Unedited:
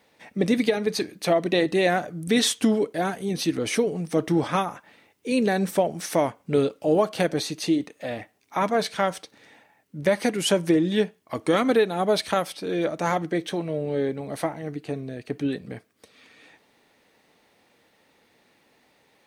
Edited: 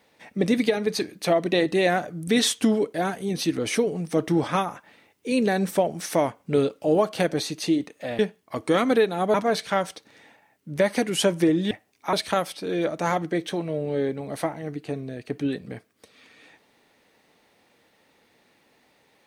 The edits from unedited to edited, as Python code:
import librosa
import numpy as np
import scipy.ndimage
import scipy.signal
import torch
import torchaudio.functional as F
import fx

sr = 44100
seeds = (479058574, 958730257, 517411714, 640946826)

y = fx.edit(x, sr, fx.swap(start_s=8.19, length_s=0.42, other_s=10.98, other_length_s=1.15), tone=tone)